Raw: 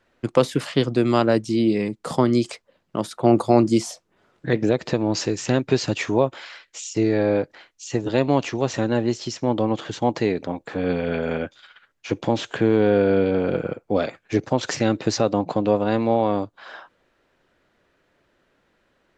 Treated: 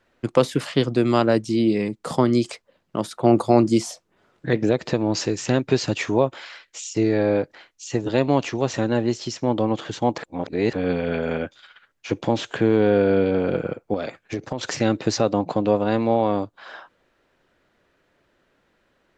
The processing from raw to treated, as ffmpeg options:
-filter_complex "[0:a]asettb=1/sr,asplit=3[a][b][c];[a]atrim=end=13.944[d];[b]atrim=start=13.94:end=14.8,asetpts=PTS-STARTPTS,afade=t=in:d=0.004:c=qsin,afade=t=out:st=0.856:d=0.004:c=qsin,acompressor=threshold=-22dB:ratio=6:attack=3.2:release=140:knee=1:detection=peak[e];[c]atrim=start=14.796[f];[d][e]acrossfade=d=0.004:c1=hsin:c2=qsin[g];[g][f]acrossfade=d=0.004:c1=qsin:c2=hsin,asplit=3[h][i][j];[h]atrim=end=10.182[k];[i]atrim=start=10.178:end=10.732,asetpts=PTS-STARTPTS,areverse[l];[j]atrim=start=10.728[m];[k][l]acrossfade=d=0.004:c1=hsin:c2=hsin[n];[n][m]acrossfade=d=0.004:c1=hsin:c2=hsin"

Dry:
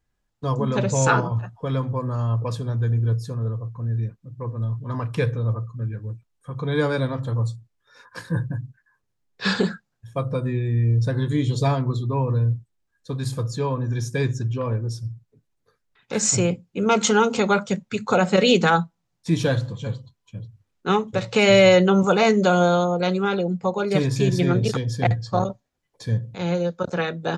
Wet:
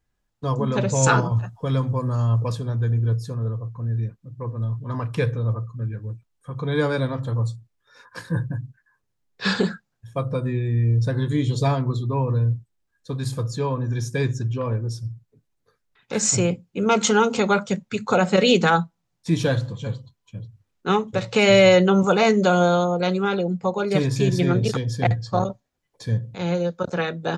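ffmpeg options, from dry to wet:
-filter_complex "[0:a]asettb=1/sr,asplit=3[a][b][c];[a]atrim=end=1.034[d];[b]atrim=start=1.03:end=2.52,asetpts=PTS-STARTPTS,afade=t=in:d=0.004:c=qsin,afade=t=out:st=1.486:d=0.004:c=qsin,bass=f=250:g=3,treble=f=4k:g=8[e];[c]atrim=start=2.516[f];[d][e]acrossfade=d=0.004:c1=hsin:c2=qsin[g];[g][f]acrossfade=d=0.004:c1=qsin:c2=hsin"

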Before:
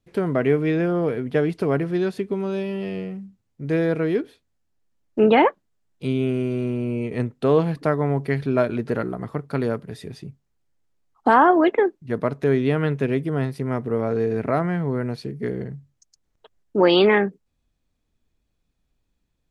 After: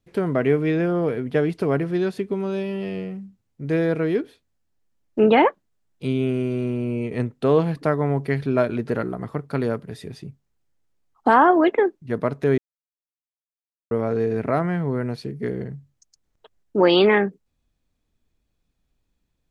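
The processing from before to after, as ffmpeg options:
-filter_complex "[0:a]asplit=3[a][b][c];[a]atrim=end=12.58,asetpts=PTS-STARTPTS,afade=t=out:st=12.576:d=0.004:c=hsin[d];[b]atrim=start=12.58:end=13.91,asetpts=PTS-STARTPTS,volume=0[e];[c]atrim=start=13.91,asetpts=PTS-STARTPTS,afade=t=in:d=0.004:c=hsin[f];[d][e][f]concat=n=3:v=0:a=1"

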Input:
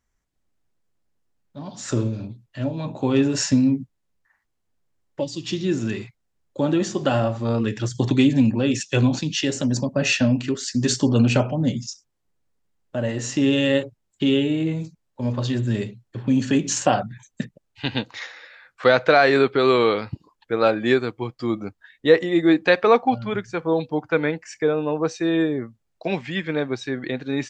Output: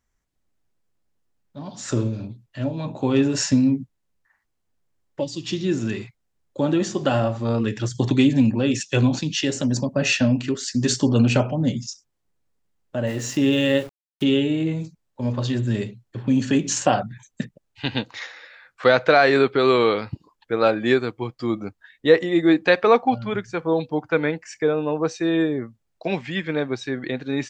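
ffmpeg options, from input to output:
-filter_complex "[0:a]asettb=1/sr,asplit=3[a][b][c];[a]atrim=end=13.074[d];[b]atrim=start=13.07:end=14.24,asetpts=PTS-STARTPTS,afade=t=in:d=0.004:c=qsin,afade=t=out:st=1.166:d=0.004:c=qsin,aeval=exprs='val(0)*gte(abs(val(0)),0.0119)':c=same[e];[c]atrim=start=14.236[f];[d][e]acrossfade=d=0.004:c1=hsin:c2=qsin[g];[g][f]acrossfade=d=0.004:c1=qsin:c2=hsin"

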